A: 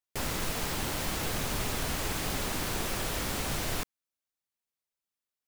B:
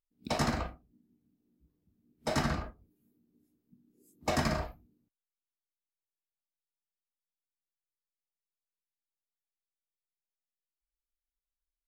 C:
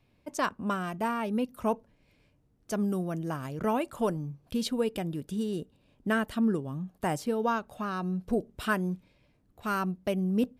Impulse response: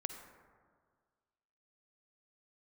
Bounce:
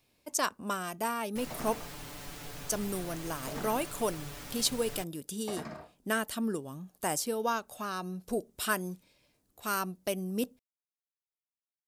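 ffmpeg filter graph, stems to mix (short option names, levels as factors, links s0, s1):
-filter_complex "[0:a]aecho=1:1:6.9:0.95,adelay=1200,volume=0.188[s0];[1:a]highpass=160,highshelf=f=2700:g=-10.5,adelay=1200,volume=0.335[s1];[2:a]bass=f=250:g=-8,treble=f=4000:g=14,volume=0.794[s2];[s0][s1][s2]amix=inputs=3:normalize=0"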